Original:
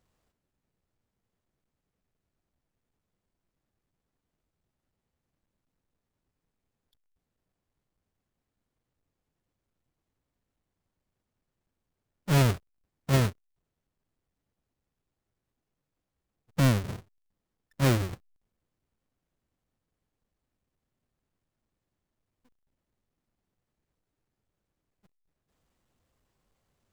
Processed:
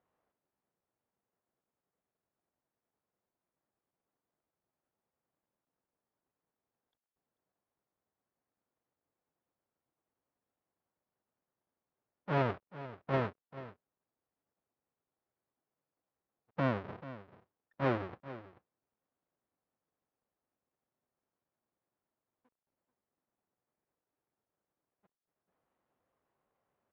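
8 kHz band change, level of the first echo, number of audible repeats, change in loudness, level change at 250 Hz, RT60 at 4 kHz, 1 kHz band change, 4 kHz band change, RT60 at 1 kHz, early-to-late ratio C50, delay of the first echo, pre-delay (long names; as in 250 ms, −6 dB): below −30 dB, −15.0 dB, 1, −9.5 dB, −8.0 dB, no reverb audible, −1.5 dB, −15.0 dB, no reverb audible, no reverb audible, 437 ms, no reverb audible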